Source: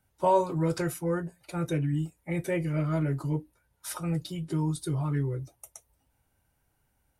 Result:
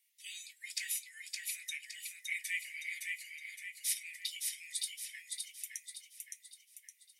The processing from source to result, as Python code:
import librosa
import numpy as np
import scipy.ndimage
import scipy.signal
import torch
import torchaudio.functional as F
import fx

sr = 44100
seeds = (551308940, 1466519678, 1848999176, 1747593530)

y = scipy.signal.sosfilt(scipy.signal.butter(16, 1900.0, 'highpass', fs=sr, output='sos'), x)
y = fx.echo_feedback(y, sr, ms=565, feedback_pct=45, wet_db=-3.5)
y = y * 10.0 ** (4.0 / 20.0)